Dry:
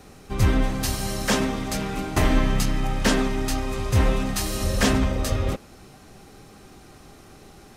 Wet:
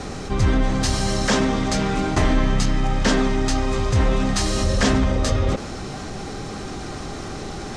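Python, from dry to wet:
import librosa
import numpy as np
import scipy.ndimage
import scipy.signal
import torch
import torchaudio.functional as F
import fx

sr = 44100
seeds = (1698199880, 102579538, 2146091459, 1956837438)

y = scipy.signal.sosfilt(scipy.signal.butter(4, 7800.0, 'lowpass', fs=sr, output='sos'), x)
y = fx.peak_eq(y, sr, hz=2600.0, db=-3.5, octaves=0.36)
y = fx.env_flatten(y, sr, amount_pct=50)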